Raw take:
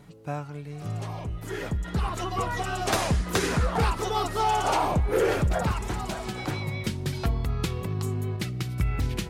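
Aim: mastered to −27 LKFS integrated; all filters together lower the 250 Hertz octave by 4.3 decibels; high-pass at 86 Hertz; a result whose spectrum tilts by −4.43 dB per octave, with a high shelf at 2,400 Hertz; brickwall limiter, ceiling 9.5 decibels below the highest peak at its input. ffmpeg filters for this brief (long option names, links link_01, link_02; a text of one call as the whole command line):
ffmpeg -i in.wav -af "highpass=86,equalizer=frequency=250:width_type=o:gain=-7,highshelf=frequency=2400:gain=7,volume=3dB,alimiter=limit=-15.5dB:level=0:latency=1" out.wav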